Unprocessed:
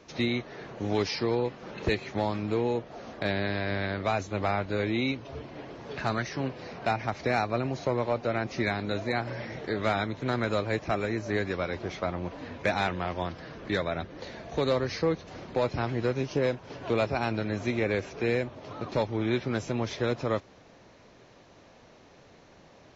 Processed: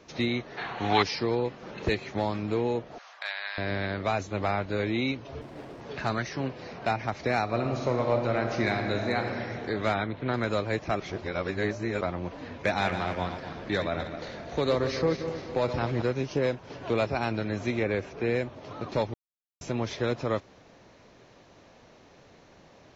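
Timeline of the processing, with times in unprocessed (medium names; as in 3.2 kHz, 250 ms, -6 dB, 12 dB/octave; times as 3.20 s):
0.57–1.03 s: time-frequency box 670–4500 Hz +12 dB
2.98–3.58 s: high-pass 930 Hz 24 dB/octave
5.41–5.81 s: sliding maximum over 9 samples
7.42–9.20 s: reverb throw, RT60 2.7 s, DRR 3 dB
9.94–10.34 s: low-pass 3.7 kHz 24 dB/octave
11.00–12.01 s: reverse
12.65–16.02 s: backward echo that repeats 126 ms, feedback 65%, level -8.5 dB
17.82–18.34 s: treble shelf 4.7 kHz -> 3.7 kHz -9 dB
19.14–19.61 s: mute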